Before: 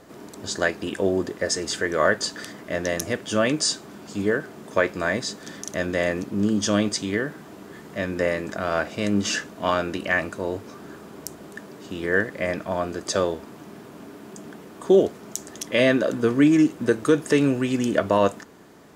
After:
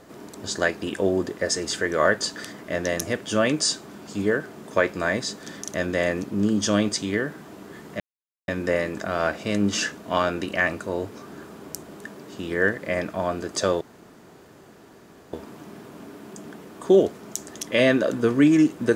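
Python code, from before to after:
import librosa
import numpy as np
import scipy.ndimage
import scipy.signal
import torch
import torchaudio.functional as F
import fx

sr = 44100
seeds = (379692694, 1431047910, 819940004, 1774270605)

y = fx.edit(x, sr, fx.insert_silence(at_s=8.0, length_s=0.48),
    fx.insert_room_tone(at_s=13.33, length_s=1.52), tone=tone)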